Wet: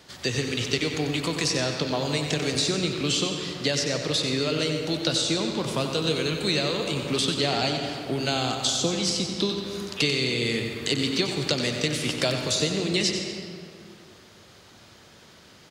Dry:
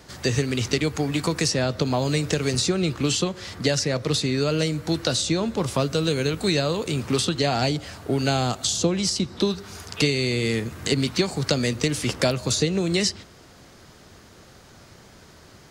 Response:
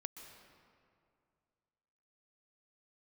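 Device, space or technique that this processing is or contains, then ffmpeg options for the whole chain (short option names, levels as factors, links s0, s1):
PA in a hall: -filter_complex "[0:a]highpass=f=120:p=1,equalizer=f=3300:t=o:w=1:g=6.5,aecho=1:1:92:0.376[s0];[1:a]atrim=start_sample=2205[s1];[s0][s1]afir=irnorm=-1:irlink=0"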